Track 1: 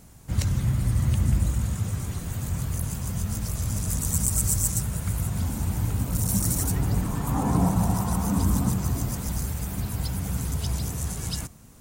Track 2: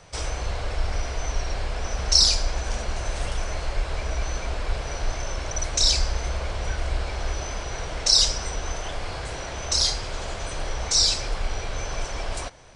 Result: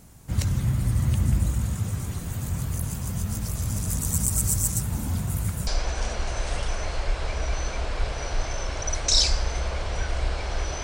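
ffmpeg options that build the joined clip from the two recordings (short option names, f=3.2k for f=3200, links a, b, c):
-filter_complex "[0:a]apad=whole_dur=10.83,atrim=end=10.83,asplit=2[a][b];[a]atrim=end=4.902[c];[b]atrim=start=4.898:end=5.672,asetpts=PTS-STARTPTS,areverse[d];[1:a]atrim=start=2.358:end=7.52[e];[c][d]acrossfade=d=0.004:c1=hsin:c2=hsin[f];[f][e]acrossfade=d=0.004:c1=hsin:c2=hsin"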